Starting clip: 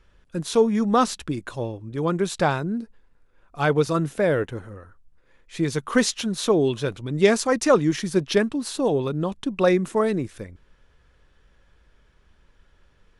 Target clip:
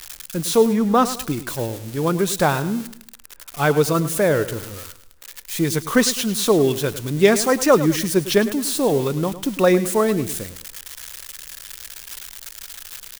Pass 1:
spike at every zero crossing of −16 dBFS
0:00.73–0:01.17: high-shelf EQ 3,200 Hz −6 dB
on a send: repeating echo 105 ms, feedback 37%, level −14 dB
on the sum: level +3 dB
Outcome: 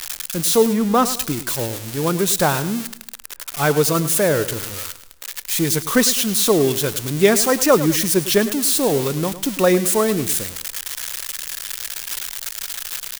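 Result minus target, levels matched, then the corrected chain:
spike at every zero crossing: distortion +8 dB
spike at every zero crossing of −24 dBFS
0:00.73–0:01.17: high-shelf EQ 3,200 Hz −6 dB
on a send: repeating echo 105 ms, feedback 37%, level −14 dB
on the sum: level +3 dB

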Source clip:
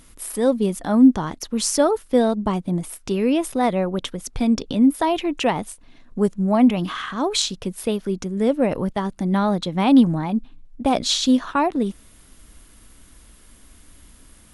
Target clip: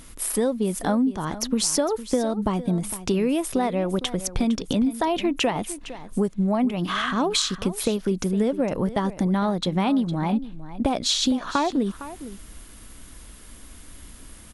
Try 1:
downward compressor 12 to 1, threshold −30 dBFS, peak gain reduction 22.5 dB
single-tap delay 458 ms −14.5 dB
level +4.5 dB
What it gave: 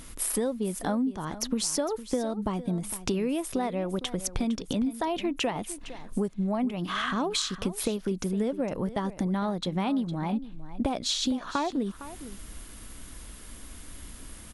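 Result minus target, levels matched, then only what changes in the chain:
downward compressor: peak gain reduction +6 dB
change: downward compressor 12 to 1, threshold −23.5 dBFS, peak gain reduction 16.5 dB

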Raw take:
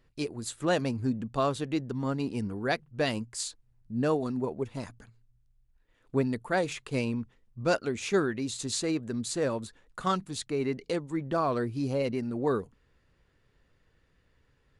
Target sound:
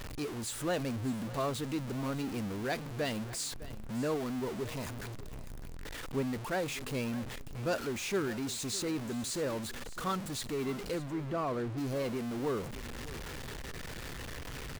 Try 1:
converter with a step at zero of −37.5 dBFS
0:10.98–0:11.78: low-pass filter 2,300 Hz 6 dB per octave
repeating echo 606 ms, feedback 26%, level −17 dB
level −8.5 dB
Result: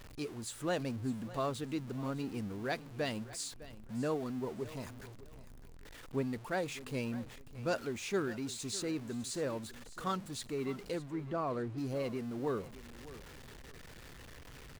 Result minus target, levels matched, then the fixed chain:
converter with a step at zero: distortion −8 dB
converter with a step at zero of −27.5 dBFS
0:10.98–0:11.78: low-pass filter 2,300 Hz 6 dB per octave
repeating echo 606 ms, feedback 26%, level −17 dB
level −8.5 dB

